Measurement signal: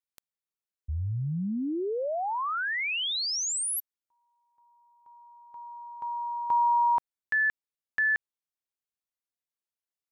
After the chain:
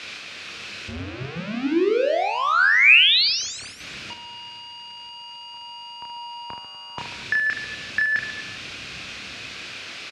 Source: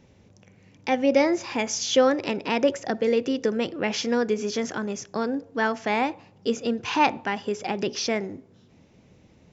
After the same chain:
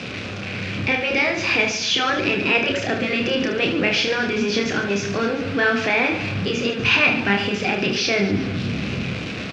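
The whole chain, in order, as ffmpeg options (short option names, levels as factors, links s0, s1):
-filter_complex "[0:a]aeval=exprs='val(0)+0.5*0.0282*sgn(val(0))':c=same,aemphasis=mode=production:type=50kf,acrossover=split=200[s0][s1];[s0]dynaudnorm=f=170:g=9:m=4.22[s2];[s2][s1]amix=inputs=2:normalize=0,afftfilt=real='re*lt(hypot(re,im),0.891)':imag='im*lt(hypot(re,im),0.891)':win_size=1024:overlap=0.75,asplit=2[s3][s4];[s4]alimiter=limit=0.168:level=0:latency=1:release=361,volume=1.26[s5];[s3][s5]amix=inputs=2:normalize=0,asoftclip=type=tanh:threshold=0.447,highpass=100,equalizer=f=150:t=q:w=4:g=-6,equalizer=f=900:t=q:w=4:g=-8,equalizer=f=1500:t=q:w=4:g=4,equalizer=f=2500:t=q:w=4:g=9,lowpass=f=4400:w=0.5412,lowpass=f=4400:w=1.3066,aecho=1:1:30|75|142.5|243.8|395.6:0.631|0.398|0.251|0.158|0.1,volume=0.75"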